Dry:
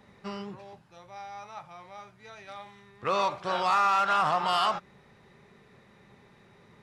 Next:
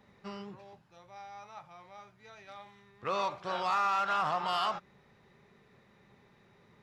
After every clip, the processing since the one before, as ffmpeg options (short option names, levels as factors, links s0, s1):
-af "equalizer=f=8900:w=4.3:g=-8.5,volume=0.531"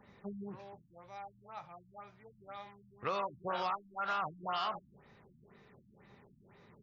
-af "acompressor=threshold=0.0224:ratio=6,afftfilt=real='re*lt(b*sr/1024,290*pow(7300/290,0.5+0.5*sin(2*PI*2*pts/sr)))':imag='im*lt(b*sr/1024,290*pow(7300/290,0.5+0.5*sin(2*PI*2*pts/sr)))':win_size=1024:overlap=0.75,volume=1.19"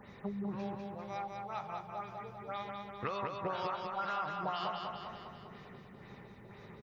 -filter_complex "[0:a]acompressor=threshold=0.00794:ratio=10,asplit=2[s0][s1];[s1]aecho=0:1:198|396|594|792|990|1188|1386|1584:0.631|0.366|0.212|0.123|0.0714|0.0414|0.024|0.0139[s2];[s0][s2]amix=inputs=2:normalize=0,volume=2.37"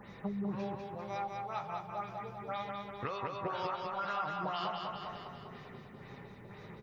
-filter_complex "[0:a]asplit=2[s0][s1];[s1]alimiter=level_in=2.11:limit=0.0631:level=0:latency=1:release=485,volume=0.473,volume=1.12[s2];[s0][s2]amix=inputs=2:normalize=0,flanger=delay=5.8:depth=2.2:regen=-59:speed=0.43:shape=triangular"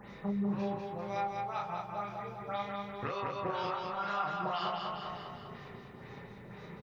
-filter_complex "[0:a]asplit=2[s0][s1];[s1]adelay=35,volume=0.708[s2];[s0][s2]amix=inputs=2:normalize=0"